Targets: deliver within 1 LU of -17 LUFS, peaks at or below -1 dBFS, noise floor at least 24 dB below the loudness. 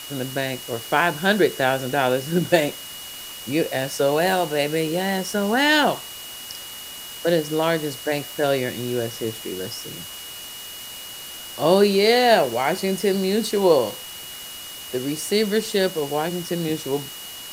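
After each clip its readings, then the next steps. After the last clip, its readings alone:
steady tone 2900 Hz; tone level -38 dBFS; noise floor -37 dBFS; noise floor target -46 dBFS; loudness -21.5 LUFS; peak -3.0 dBFS; loudness target -17.0 LUFS
-> notch 2900 Hz, Q 30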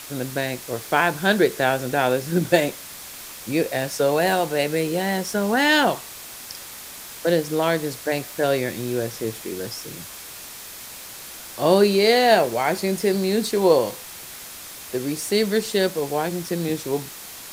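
steady tone none; noise floor -39 dBFS; noise floor target -46 dBFS
-> noise print and reduce 7 dB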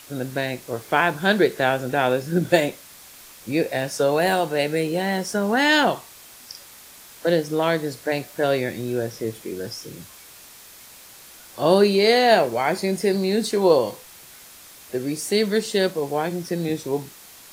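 noise floor -46 dBFS; loudness -22.0 LUFS; peak -3.0 dBFS; loudness target -17.0 LUFS
-> gain +5 dB; limiter -1 dBFS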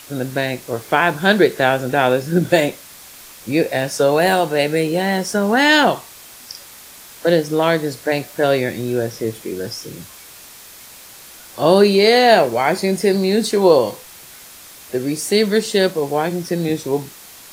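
loudness -17.0 LUFS; peak -1.0 dBFS; noise floor -41 dBFS

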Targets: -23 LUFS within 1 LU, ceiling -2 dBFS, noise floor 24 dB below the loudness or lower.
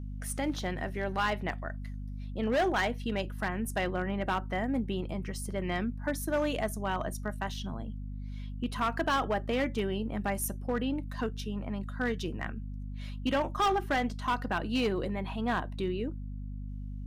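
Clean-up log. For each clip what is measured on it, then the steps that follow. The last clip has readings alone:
clipped 1.3%; flat tops at -23.0 dBFS; hum 50 Hz; harmonics up to 250 Hz; hum level -36 dBFS; loudness -33.0 LUFS; peak -23.0 dBFS; loudness target -23.0 LUFS
-> clip repair -23 dBFS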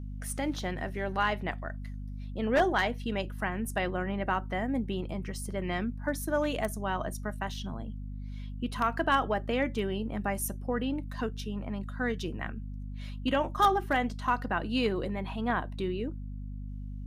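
clipped 0.0%; hum 50 Hz; harmonics up to 250 Hz; hum level -36 dBFS
-> de-hum 50 Hz, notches 5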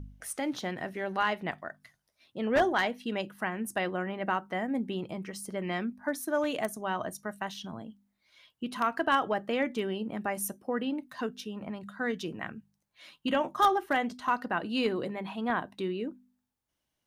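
hum none; loudness -32.0 LUFS; peak -13.5 dBFS; loudness target -23.0 LUFS
-> gain +9 dB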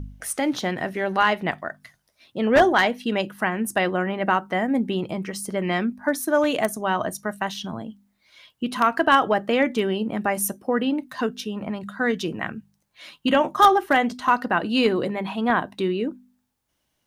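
loudness -23.0 LUFS; peak -4.5 dBFS; noise floor -74 dBFS

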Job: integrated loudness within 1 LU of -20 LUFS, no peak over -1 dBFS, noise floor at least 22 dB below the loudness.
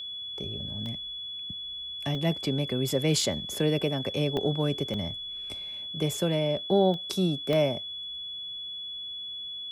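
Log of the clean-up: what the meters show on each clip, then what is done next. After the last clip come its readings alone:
dropouts 7; longest dropout 1.1 ms; steady tone 3400 Hz; tone level -35 dBFS; loudness -29.5 LUFS; peak -11.5 dBFS; loudness target -20.0 LUFS
-> interpolate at 0.86/2.15/3.21/4.37/4.94/6.94/7.53, 1.1 ms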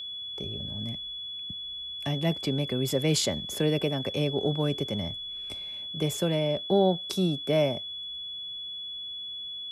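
dropouts 0; steady tone 3400 Hz; tone level -35 dBFS
-> notch 3400 Hz, Q 30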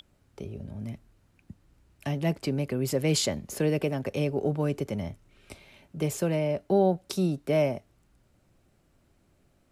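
steady tone none; loudness -28.5 LUFS; peak -12.0 dBFS; loudness target -20.0 LUFS
-> gain +8.5 dB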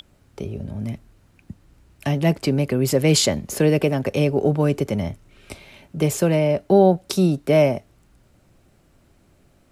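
loudness -20.0 LUFS; peak -3.5 dBFS; noise floor -58 dBFS

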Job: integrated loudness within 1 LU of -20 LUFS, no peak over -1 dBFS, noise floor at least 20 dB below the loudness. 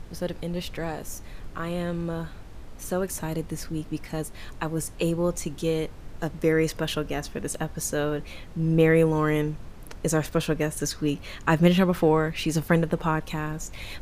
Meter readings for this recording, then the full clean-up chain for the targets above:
noise floor -42 dBFS; noise floor target -47 dBFS; loudness -26.5 LUFS; peak -5.0 dBFS; loudness target -20.0 LUFS
-> noise print and reduce 6 dB; gain +6.5 dB; limiter -1 dBFS

